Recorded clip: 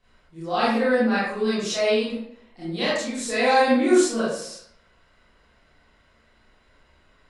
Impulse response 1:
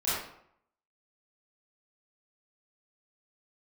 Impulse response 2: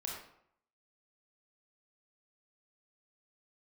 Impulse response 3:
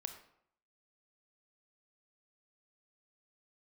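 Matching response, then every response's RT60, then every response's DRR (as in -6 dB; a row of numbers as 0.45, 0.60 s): 1; 0.70, 0.70, 0.70 s; -12.0, -2.0, 7.0 dB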